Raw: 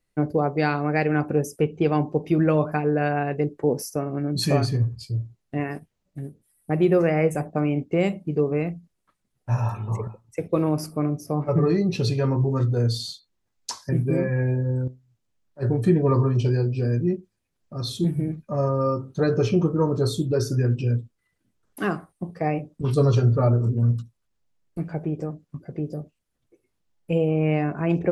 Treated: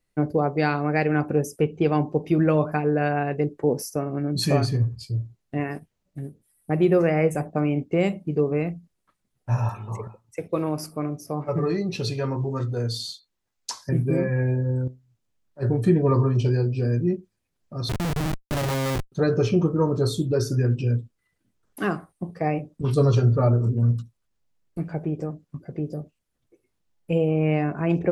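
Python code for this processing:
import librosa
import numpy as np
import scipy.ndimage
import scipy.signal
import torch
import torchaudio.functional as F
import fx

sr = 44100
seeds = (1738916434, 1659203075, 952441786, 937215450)

y = fx.low_shelf(x, sr, hz=430.0, db=-6.0, at=(9.69, 13.78))
y = fx.schmitt(y, sr, flips_db=-27.5, at=(17.89, 19.12))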